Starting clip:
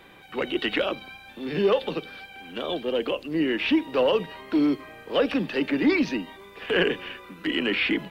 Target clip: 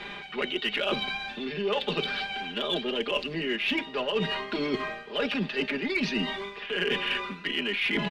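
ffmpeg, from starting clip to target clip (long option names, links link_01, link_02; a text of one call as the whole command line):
ffmpeg -i in.wav -af "lowpass=5000,equalizer=frequency=3700:width=0.5:gain=8,aecho=1:1:4.9:0.92,areverse,acompressor=threshold=-31dB:ratio=12,areverse,aeval=exprs='0.0944*(cos(1*acos(clip(val(0)/0.0944,-1,1)))-cos(1*PI/2))+0.00944*(cos(2*acos(clip(val(0)/0.0944,-1,1)))-cos(2*PI/2))+0.00168*(cos(8*acos(clip(val(0)/0.0944,-1,1)))-cos(8*PI/2))':channel_layout=same,volume=5.5dB" out.wav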